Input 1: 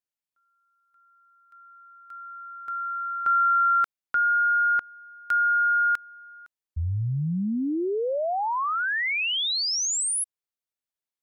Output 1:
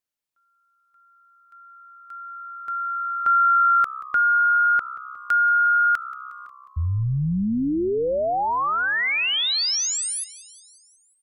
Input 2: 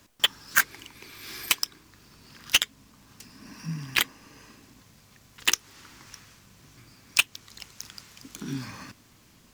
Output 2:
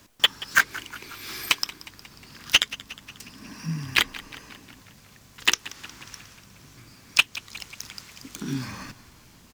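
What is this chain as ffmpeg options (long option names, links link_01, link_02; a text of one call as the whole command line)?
ffmpeg -i in.wav -filter_complex "[0:a]acrossover=split=5900[link_01][link_02];[link_02]acompressor=threshold=-32dB:ratio=4:attack=1:release=60[link_03];[link_01][link_03]amix=inputs=2:normalize=0,asplit=2[link_04][link_05];[link_05]asplit=6[link_06][link_07][link_08][link_09][link_10][link_11];[link_06]adelay=180,afreqshift=-65,volume=-18dB[link_12];[link_07]adelay=360,afreqshift=-130,volume=-22.3dB[link_13];[link_08]adelay=540,afreqshift=-195,volume=-26.6dB[link_14];[link_09]adelay=720,afreqshift=-260,volume=-30.9dB[link_15];[link_10]adelay=900,afreqshift=-325,volume=-35.2dB[link_16];[link_11]adelay=1080,afreqshift=-390,volume=-39.5dB[link_17];[link_12][link_13][link_14][link_15][link_16][link_17]amix=inputs=6:normalize=0[link_18];[link_04][link_18]amix=inputs=2:normalize=0,volume=3.5dB" out.wav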